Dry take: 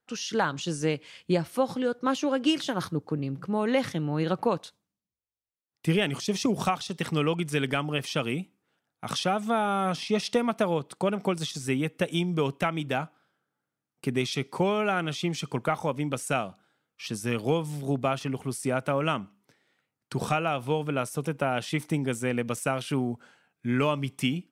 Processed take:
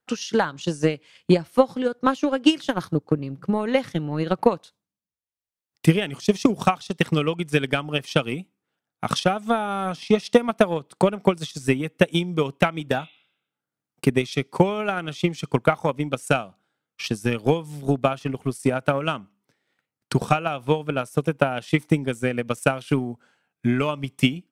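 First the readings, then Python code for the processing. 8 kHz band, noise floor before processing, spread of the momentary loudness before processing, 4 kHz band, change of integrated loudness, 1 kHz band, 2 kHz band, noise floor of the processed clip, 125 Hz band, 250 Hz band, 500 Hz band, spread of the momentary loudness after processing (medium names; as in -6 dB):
0.0 dB, under -85 dBFS, 6 LU, +3.0 dB, +5.0 dB, +4.0 dB, +4.5 dB, under -85 dBFS, +5.0 dB, +5.5 dB, +5.5 dB, 7 LU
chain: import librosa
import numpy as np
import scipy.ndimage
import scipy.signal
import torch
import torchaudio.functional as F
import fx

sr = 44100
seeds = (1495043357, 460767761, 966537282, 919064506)

y = fx.transient(x, sr, attack_db=11, sustain_db=-5)
y = fx.spec_repair(y, sr, seeds[0], start_s=12.94, length_s=0.68, low_hz=2000.0, high_hz=4100.0, source='both')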